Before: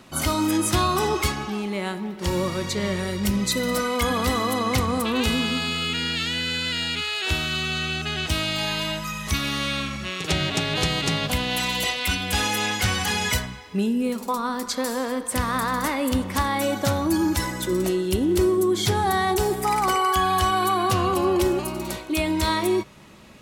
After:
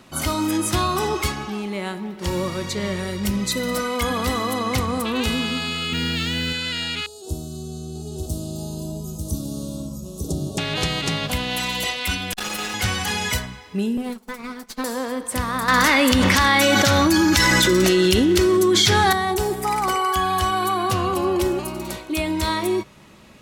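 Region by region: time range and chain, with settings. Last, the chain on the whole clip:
0:05.92–0:06.53: high-pass filter 56 Hz + low-shelf EQ 370 Hz +8.5 dB + noise that follows the level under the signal 27 dB
0:07.06–0:10.58: Chebyshev band-stop filter 460–8,000 Hz + single-tap delay 893 ms −4 dB
0:12.33–0:12.74: lower of the sound and its delayed copy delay 5.5 ms + saturating transformer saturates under 710 Hz
0:13.97–0:14.84: lower of the sound and its delayed copy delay 4.6 ms + expander for the loud parts 2.5 to 1, over −35 dBFS
0:15.68–0:19.13: flat-topped bell 3,000 Hz +8 dB 2.6 octaves + envelope flattener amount 100%
whole clip: no processing

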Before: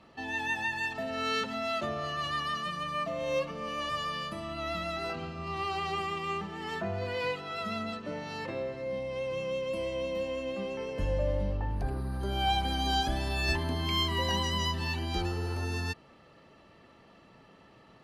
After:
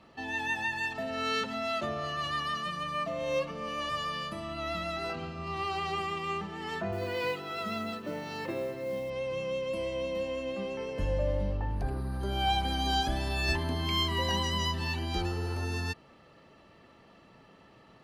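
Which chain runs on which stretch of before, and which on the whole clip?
0:06.92–0:09.10: high-pass filter 84 Hz + parametric band 350 Hz +9.5 dB 0.22 octaves + noise that follows the level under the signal 27 dB
whole clip: no processing

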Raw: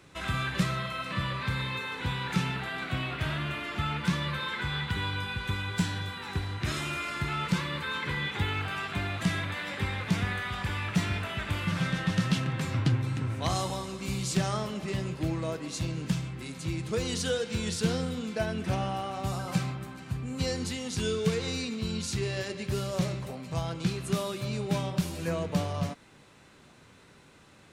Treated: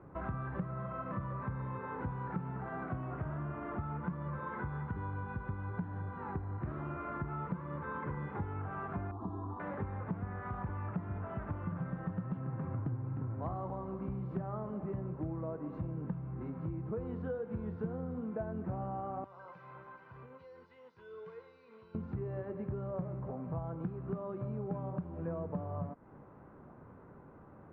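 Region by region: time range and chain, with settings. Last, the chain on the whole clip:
0:09.11–0:09.60: flat-topped bell 2,000 Hz −15 dB 1.3 octaves + phaser with its sweep stopped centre 570 Hz, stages 6
0:19.24–0:21.95: resonant band-pass 5,700 Hz, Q 2.3 + comb filter 2 ms, depth 59% + envelope flattener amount 70%
whole clip: low-pass filter 1,200 Hz 24 dB per octave; downward compressor 4 to 1, threshold −40 dBFS; level +3 dB

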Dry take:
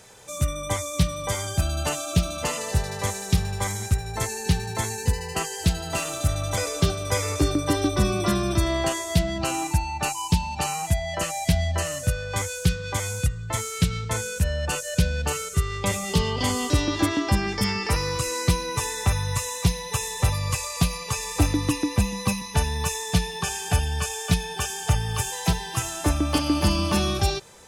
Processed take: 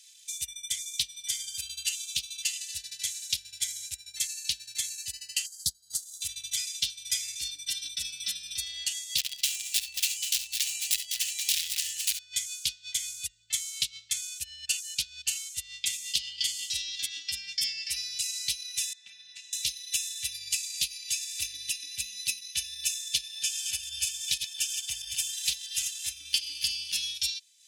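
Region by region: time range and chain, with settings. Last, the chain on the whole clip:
0:05.46–0:06.22: dynamic equaliser 6,100 Hz, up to −4 dB, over −41 dBFS, Q 1.1 + transient designer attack +7 dB, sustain −8 dB + Butterworth band-reject 2,500 Hz, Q 0.63
0:09.18–0:12.19: wrap-around overflow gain 18 dB + multi-tap delay 54/68/201/247/677/790 ms −10.5/−7.5/−13/−15.5/−14/−5 dB
0:18.93–0:19.53: high-pass filter 200 Hz 24 dB per octave + head-to-tape spacing loss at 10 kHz 26 dB
0:23.25–0:26.09: delay that plays each chunk backwards 161 ms, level −4 dB + parametric band 900 Hz +8 dB 0.3 octaves
whole clip: inverse Chebyshev high-pass filter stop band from 1,200 Hz, stop band 50 dB; spectral tilt −2.5 dB per octave; transient designer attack +7 dB, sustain −8 dB; level +5 dB

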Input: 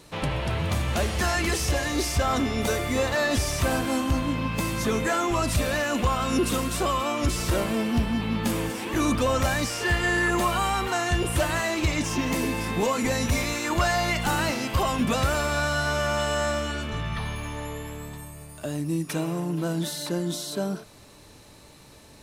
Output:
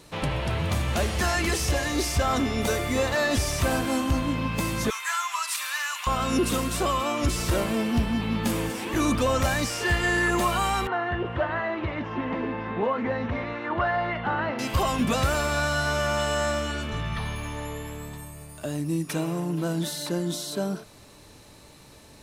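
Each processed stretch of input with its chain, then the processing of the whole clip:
0:04.90–0:06.07: elliptic high-pass filter 990 Hz, stop band 80 dB + high-shelf EQ 6,200 Hz +4.5 dB
0:10.87–0:14.59: loudspeaker in its box 110–2,500 Hz, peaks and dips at 160 Hz −8 dB, 300 Hz −5 dB, 2,400 Hz −9 dB + highs frequency-modulated by the lows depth 0.1 ms
whole clip: no processing

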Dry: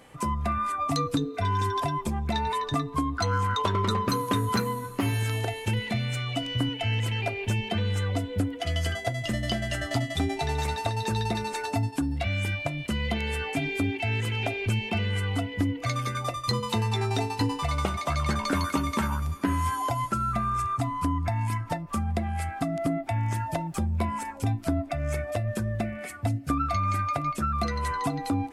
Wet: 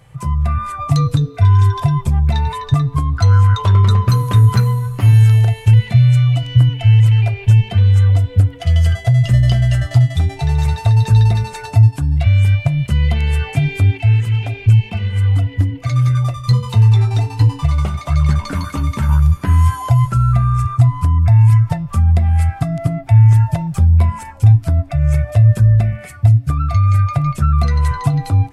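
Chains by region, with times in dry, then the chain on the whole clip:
0:13.98–0:19.09: parametric band 270 Hz +8 dB 0.33 octaves + flanger 1.4 Hz, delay 0.3 ms, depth 5.7 ms, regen −48%
whole clip: low shelf with overshoot 180 Hz +11 dB, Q 3; hum removal 274.1 Hz, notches 22; automatic gain control gain up to 6 dB

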